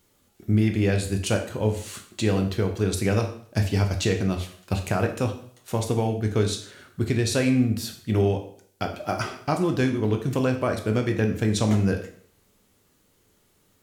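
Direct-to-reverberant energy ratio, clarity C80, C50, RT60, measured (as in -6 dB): 4.0 dB, 13.0 dB, 9.5 dB, 0.55 s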